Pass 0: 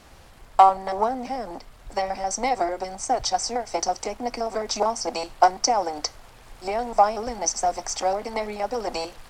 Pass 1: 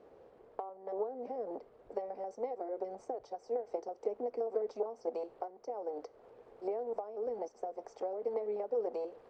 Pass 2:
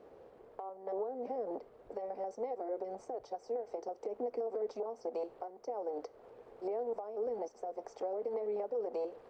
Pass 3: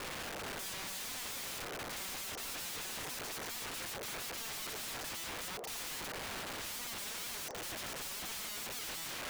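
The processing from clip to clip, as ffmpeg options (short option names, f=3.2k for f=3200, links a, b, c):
-af "acompressor=threshold=-30dB:ratio=20,bandpass=f=450:t=q:w=4.7:csg=0,volume=5.5dB"
-af "alimiter=level_in=7dB:limit=-24dB:level=0:latency=1:release=73,volume=-7dB,volume=2dB"
-filter_complex "[0:a]asplit=2[a][b];[b]highpass=f=720:p=1,volume=21dB,asoftclip=type=tanh:threshold=-28.5dB[c];[a][c]amix=inputs=2:normalize=0,lowpass=f=1.2k:p=1,volume=-6dB,aeval=exprs='(mod(211*val(0)+1,2)-1)/211':c=same,volume=9dB"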